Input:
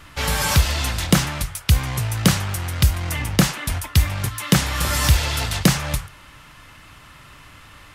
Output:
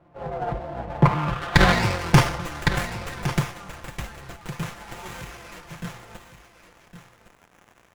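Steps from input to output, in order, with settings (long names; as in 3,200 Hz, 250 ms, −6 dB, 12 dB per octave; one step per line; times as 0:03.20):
pitch shifter swept by a sawtooth −6.5 semitones, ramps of 620 ms
source passing by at 0:01.62, 29 m/s, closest 3.8 metres
high-pass filter 86 Hz 12 dB per octave
comb filter 5.8 ms, depth 69%
surface crackle 270 per second −55 dBFS
low-pass filter sweep 680 Hz → 9,000 Hz, 0:00.84–0:02.71
single-tap delay 1,110 ms −11.5 dB
boost into a limiter +12.5 dB
windowed peak hold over 9 samples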